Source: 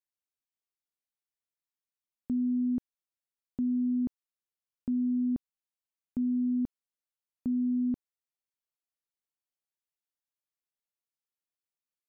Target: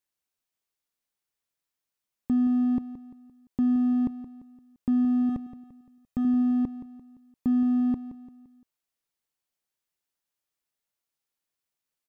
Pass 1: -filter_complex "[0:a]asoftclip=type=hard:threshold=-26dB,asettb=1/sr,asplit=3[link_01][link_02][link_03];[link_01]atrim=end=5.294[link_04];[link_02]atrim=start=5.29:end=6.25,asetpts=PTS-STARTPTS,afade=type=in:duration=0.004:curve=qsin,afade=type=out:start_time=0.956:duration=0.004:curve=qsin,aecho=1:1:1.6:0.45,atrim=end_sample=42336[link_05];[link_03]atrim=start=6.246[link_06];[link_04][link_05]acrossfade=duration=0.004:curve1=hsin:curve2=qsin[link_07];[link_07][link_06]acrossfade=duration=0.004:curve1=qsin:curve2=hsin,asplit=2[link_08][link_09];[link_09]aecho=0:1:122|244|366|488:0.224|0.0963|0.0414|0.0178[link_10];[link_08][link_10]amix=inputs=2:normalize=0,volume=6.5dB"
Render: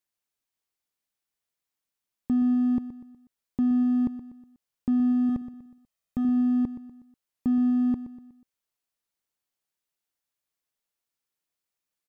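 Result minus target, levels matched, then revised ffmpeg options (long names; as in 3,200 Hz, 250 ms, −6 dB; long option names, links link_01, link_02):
echo 50 ms early
-filter_complex "[0:a]asoftclip=type=hard:threshold=-26dB,asettb=1/sr,asplit=3[link_01][link_02][link_03];[link_01]atrim=end=5.294[link_04];[link_02]atrim=start=5.29:end=6.25,asetpts=PTS-STARTPTS,afade=type=in:duration=0.004:curve=qsin,afade=type=out:start_time=0.956:duration=0.004:curve=qsin,aecho=1:1:1.6:0.45,atrim=end_sample=42336[link_05];[link_03]atrim=start=6.246[link_06];[link_04][link_05]acrossfade=duration=0.004:curve1=hsin:curve2=qsin[link_07];[link_07][link_06]acrossfade=duration=0.004:curve1=qsin:curve2=hsin,asplit=2[link_08][link_09];[link_09]aecho=0:1:172|344|516|688:0.224|0.0963|0.0414|0.0178[link_10];[link_08][link_10]amix=inputs=2:normalize=0,volume=6.5dB"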